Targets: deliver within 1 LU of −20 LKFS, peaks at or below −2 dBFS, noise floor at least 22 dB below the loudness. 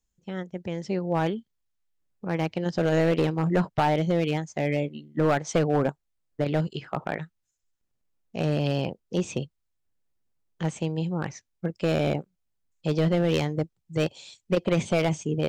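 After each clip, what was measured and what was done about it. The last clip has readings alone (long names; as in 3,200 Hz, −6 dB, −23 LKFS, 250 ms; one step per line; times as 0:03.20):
share of clipped samples 0.9%; peaks flattened at −16.0 dBFS; integrated loudness −27.5 LKFS; sample peak −16.0 dBFS; target loudness −20.0 LKFS
→ clipped peaks rebuilt −16 dBFS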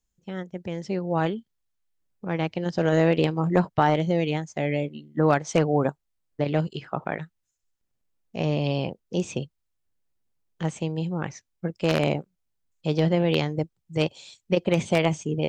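share of clipped samples 0.0%; integrated loudness −26.0 LKFS; sample peak −7.0 dBFS; target loudness −20.0 LKFS
→ level +6 dB
brickwall limiter −2 dBFS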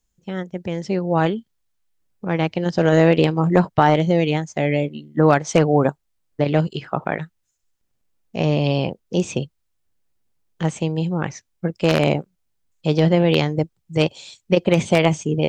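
integrated loudness −20.0 LKFS; sample peak −2.0 dBFS; background noise floor −72 dBFS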